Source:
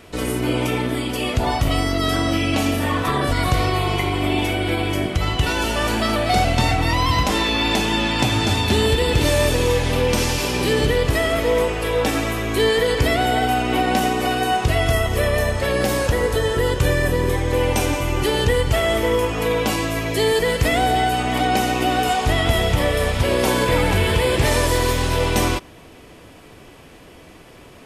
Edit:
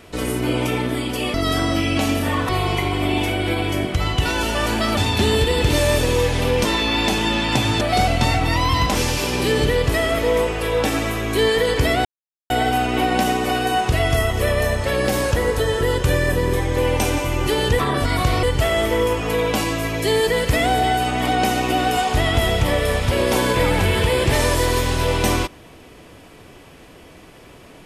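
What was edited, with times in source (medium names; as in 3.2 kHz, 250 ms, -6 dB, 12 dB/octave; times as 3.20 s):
1.34–1.91 s: delete
3.06–3.70 s: move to 18.55 s
6.18–7.32 s: swap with 8.48–10.16 s
13.26 s: insert silence 0.45 s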